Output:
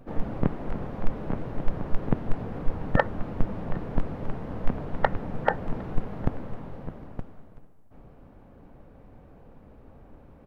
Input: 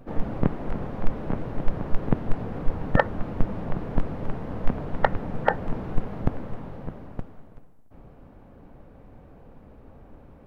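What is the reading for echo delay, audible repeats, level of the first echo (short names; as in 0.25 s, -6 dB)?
0.758 s, 1, -24.0 dB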